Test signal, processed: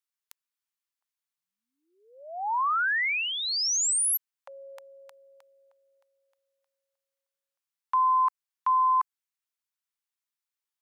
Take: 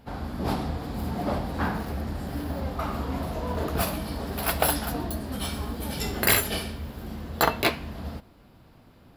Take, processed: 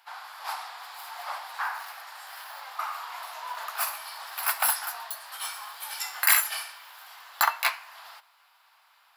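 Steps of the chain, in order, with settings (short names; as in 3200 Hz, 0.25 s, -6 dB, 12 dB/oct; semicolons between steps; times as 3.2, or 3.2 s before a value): steep high-pass 880 Hz 36 dB/oct; dynamic EQ 3400 Hz, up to -7 dB, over -46 dBFS, Q 1.7; gain +2.5 dB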